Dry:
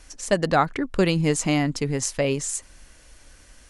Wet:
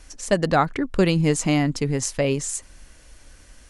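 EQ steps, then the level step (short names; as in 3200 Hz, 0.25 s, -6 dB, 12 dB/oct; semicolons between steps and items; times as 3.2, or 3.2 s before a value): low shelf 350 Hz +3 dB; 0.0 dB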